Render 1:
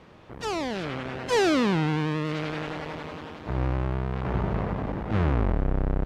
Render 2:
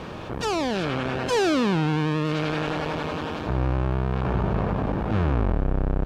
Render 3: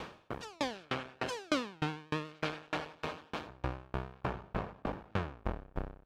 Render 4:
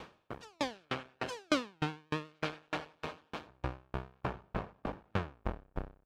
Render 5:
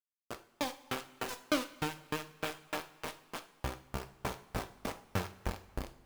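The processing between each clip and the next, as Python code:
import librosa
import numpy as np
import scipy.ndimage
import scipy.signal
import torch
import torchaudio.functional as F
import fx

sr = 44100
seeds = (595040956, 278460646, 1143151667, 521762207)

y1 = fx.notch(x, sr, hz=2000.0, q=8.8)
y1 = fx.env_flatten(y1, sr, amount_pct=50)
y2 = fx.low_shelf(y1, sr, hz=450.0, db=-9.0)
y2 = fx.tremolo_decay(y2, sr, direction='decaying', hz=3.3, depth_db=35)
y3 = fx.upward_expand(y2, sr, threshold_db=-52.0, expansion=1.5)
y3 = y3 * 10.0 ** (2.5 / 20.0)
y4 = fx.quant_dither(y3, sr, seeds[0], bits=6, dither='none')
y4 = fx.rev_double_slope(y4, sr, seeds[1], early_s=0.38, late_s=2.4, knee_db=-18, drr_db=6.5)
y4 = y4 * 10.0 ** (-1.5 / 20.0)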